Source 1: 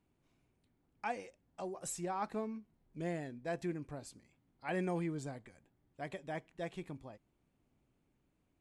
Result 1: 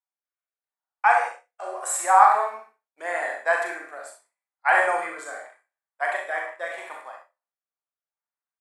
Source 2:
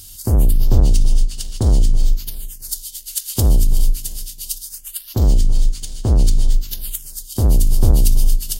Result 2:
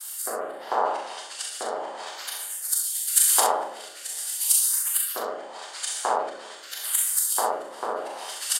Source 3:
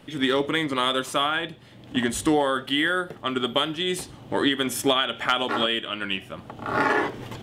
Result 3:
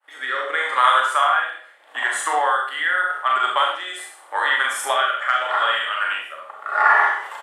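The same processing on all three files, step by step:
treble shelf 6.8 kHz -11 dB; Schroeder reverb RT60 0.56 s, combs from 27 ms, DRR 1 dB; low-pass that closes with the level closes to 1.6 kHz, closed at -8 dBFS; expander -43 dBFS; high-pass 840 Hz 24 dB/octave; high-order bell 3.9 kHz -12.5 dB; early reflections 40 ms -7.5 dB, 65 ms -9 dB; rotary cabinet horn 0.8 Hz; peak normalisation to -2 dBFS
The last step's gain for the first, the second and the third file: +24.5 dB, +16.0 dB, +10.5 dB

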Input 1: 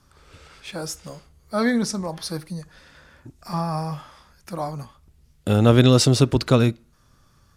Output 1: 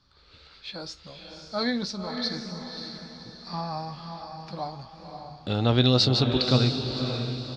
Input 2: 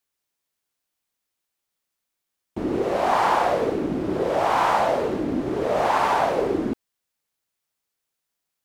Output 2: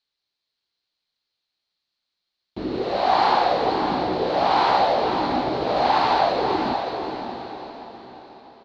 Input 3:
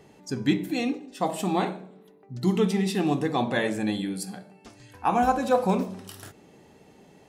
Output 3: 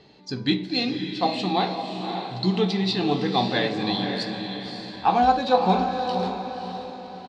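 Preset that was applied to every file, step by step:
dynamic bell 780 Hz, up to +7 dB, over -37 dBFS, Q 4.5; four-pole ladder low-pass 4.5 kHz, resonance 75%; doubling 16 ms -11 dB; on a send: echo that smears into a reverb 557 ms, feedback 43%, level -6 dB; on the sum: peak normalisation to -6 dBFS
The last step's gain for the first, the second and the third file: +3.5 dB, +9.0 dB, +11.0 dB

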